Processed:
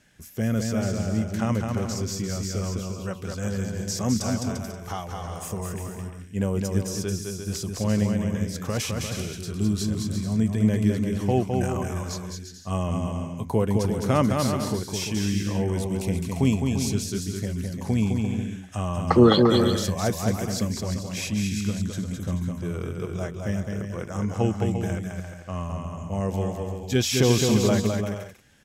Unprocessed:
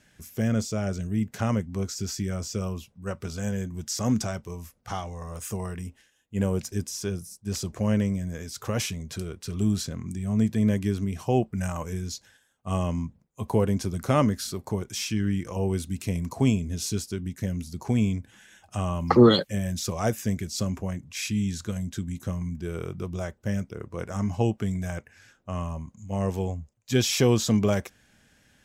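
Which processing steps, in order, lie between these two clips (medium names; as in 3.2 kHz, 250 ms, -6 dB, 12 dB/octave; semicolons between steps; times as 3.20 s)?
bouncing-ball echo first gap 210 ms, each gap 0.65×, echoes 5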